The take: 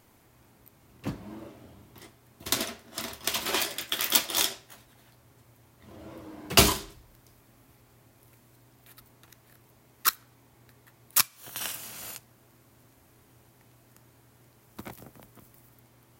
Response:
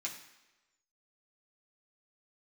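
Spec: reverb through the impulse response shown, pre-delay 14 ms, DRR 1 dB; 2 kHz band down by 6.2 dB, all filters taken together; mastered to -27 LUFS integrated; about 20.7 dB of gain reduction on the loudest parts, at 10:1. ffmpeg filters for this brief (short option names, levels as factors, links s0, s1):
-filter_complex "[0:a]equalizer=f=2000:t=o:g=-8.5,acompressor=threshold=0.0158:ratio=10,asplit=2[s0][s1];[1:a]atrim=start_sample=2205,adelay=14[s2];[s1][s2]afir=irnorm=-1:irlink=0,volume=0.841[s3];[s0][s3]amix=inputs=2:normalize=0,volume=4.47"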